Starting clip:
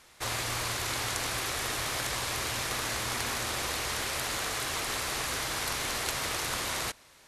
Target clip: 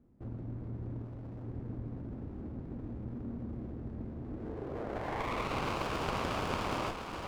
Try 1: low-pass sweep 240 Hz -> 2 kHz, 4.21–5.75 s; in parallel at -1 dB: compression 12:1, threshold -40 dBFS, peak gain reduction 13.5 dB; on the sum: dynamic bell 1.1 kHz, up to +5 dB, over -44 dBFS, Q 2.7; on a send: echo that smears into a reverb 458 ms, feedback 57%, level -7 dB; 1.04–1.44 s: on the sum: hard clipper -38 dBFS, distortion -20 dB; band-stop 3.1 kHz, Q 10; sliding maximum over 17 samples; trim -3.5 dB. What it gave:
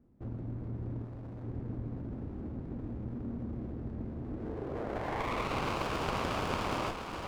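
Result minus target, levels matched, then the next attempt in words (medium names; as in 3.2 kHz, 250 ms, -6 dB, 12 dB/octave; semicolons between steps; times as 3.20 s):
compression: peak gain reduction -7.5 dB
low-pass sweep 240 Hz -> 2 kHz, 4.21–5.75 s; in parallel at -1 dB: compression 12:1, threshold -48 dBFS, peak gain reduction 21 dB; on the sum: dynamic bell 1.1 kHz, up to +5 dB, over -44 dBFS, Q 2.7; on a send: echo that smears into a reverb 458 ms, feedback 57%, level -7 dB; 1.04–1.44 s: on the sum: hard clipper -38 dBFS, distortion -22 dB; band-stop 3.1 kHz, Q 10; sliding maximum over 17 samples; trim -3.5 dB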